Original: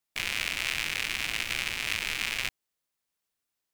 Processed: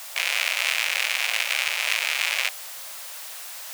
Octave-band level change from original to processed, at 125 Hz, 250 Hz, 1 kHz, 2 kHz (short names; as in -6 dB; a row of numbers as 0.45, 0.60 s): under -40 dB, under -20 dB, +8.0 dB, +7.0 dB